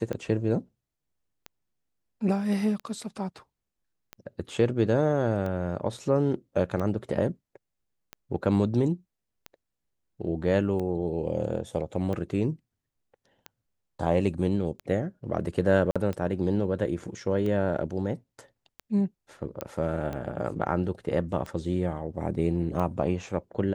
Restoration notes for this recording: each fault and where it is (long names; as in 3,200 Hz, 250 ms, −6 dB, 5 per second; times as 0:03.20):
scratch tick 45 rpm −22 dBFS
0:15.91–0:15.96: drop-out 46 ms
0:19.61: click −16 dBFS